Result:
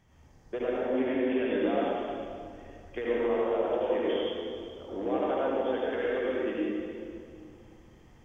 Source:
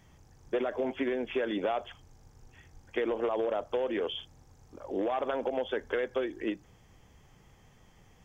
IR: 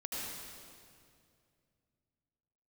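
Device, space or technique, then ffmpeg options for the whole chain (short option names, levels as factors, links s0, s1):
swimming-pool hall: -filter_complex "[0:a]asettb=1/sr,asplit=3[s0][s1][s2];[s0]atrim=end=0.864[s3];[s1]atrim=start=0.86:end=1.55,asetpts=PTS-STARTPTS,afade=t=in:d=0.004:c=qsin,afade=t=out:st=0.686:d=0.004:c=qsin,lowpass=f=5000:w=0.5412,lowpass=f=5000:w=1.3066[s4];[s2]atrim=start=1.546[s5];[s3][s4]acrossfade=d=0.004:c1=hsin:c2=qsin[s6];[s6][s5]acrossfade=d=0.004:c1=qsin:c2=hsin[s7];[1:a]atrim=start_sample=2205[s8];[s7][s8]afir=irnorm=-1:irlink=0,highshelf=f=4200:g=-6"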